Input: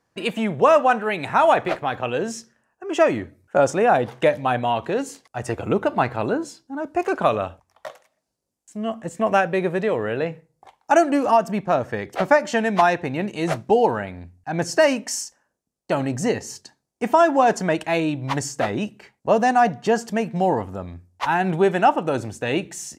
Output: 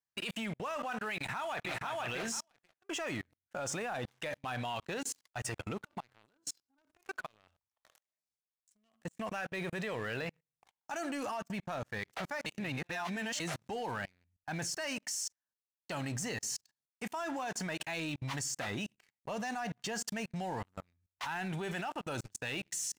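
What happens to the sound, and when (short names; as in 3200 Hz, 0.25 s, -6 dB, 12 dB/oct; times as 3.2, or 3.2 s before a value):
1.15–1.8 echo throw 0.49 s, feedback 10%, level -1.5 dB
5.77–9 compressor 16:1, threshold -26 dBFS
12.46–13.4 reverse
whole clip: passive tone stack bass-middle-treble 5-5-5; level quantiser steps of 23 dB; sample leveller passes 3; gain -2 dB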